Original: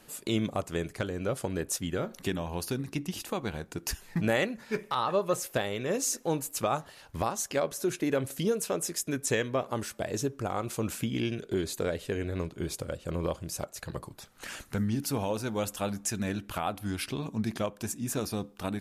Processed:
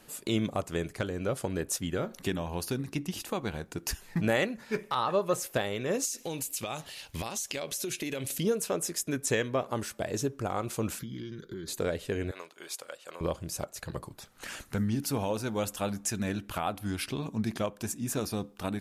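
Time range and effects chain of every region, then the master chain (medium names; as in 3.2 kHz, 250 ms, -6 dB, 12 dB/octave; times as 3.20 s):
6.05–8.38 s: resonant high shelf 1.9 kHz +8.5 dB, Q 1.5 + compression 12:1, threshold -30 dBFS
10.99–11.68 s: comb 5.8 ms, depth 33% + compression 3:1, threshold -36 dBFS + static phaser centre 2.6 kHz, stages 6
12.31–13.21 s: high-pass 830 Hz + upward compressor, threshold -59 dBFS
whole clip: none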